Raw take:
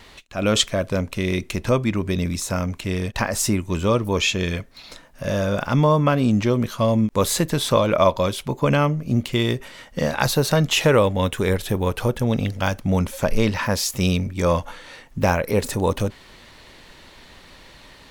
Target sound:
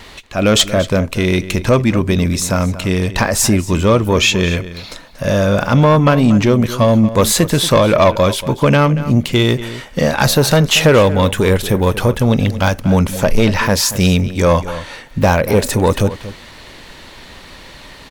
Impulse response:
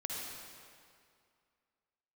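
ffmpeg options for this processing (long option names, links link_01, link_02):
-filter_complex "[0:a]asoftclip=type=tanh:threshold=-12.5dB,asplit=2[link_01][link_02];[link_02]adelay=233.2,volume=-14dB,highshelf=frequency=4000:gain=-5.25[link_03];[link_01][link_03]amix=inputs=2:normalize=0,volume=9dB"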